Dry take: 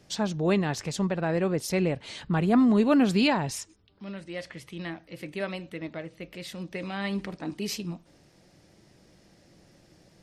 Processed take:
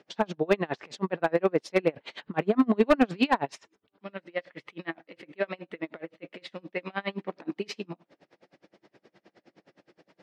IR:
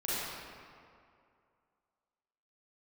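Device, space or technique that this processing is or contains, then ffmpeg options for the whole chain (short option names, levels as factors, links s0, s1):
helicopter radio: -af "highpass=310,lowpass=2700,aeval=exprs='val(0)*pow(10,-32*(0.5-0.5*cos(2*PI*9.6*n/s))/20)':c=same,asoftclip=type=hard:threshold=0.0944,volume=2.66"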